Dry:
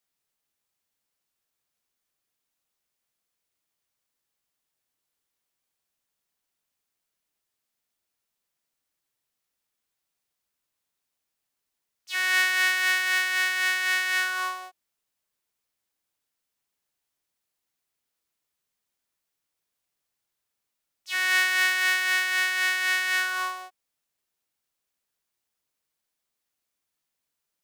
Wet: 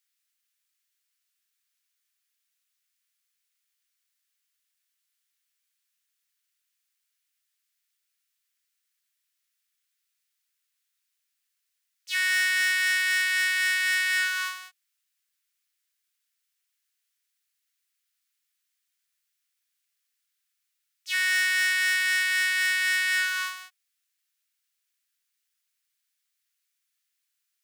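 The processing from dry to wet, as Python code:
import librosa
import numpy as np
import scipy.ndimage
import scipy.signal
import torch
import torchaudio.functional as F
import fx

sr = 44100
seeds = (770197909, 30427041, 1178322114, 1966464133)

y = scipy.signal.sosfilt(scipy.signal.butter(4, 1500.0, 'highpass', fs=sr, output='sos'), x)
y = np.clip(y, -10.0 ** (-23.5 / 20.0), 10.0 ** (-23.5 / 20.0))
y = F.gain(torch.from_numpy(y), 3.5).numpy()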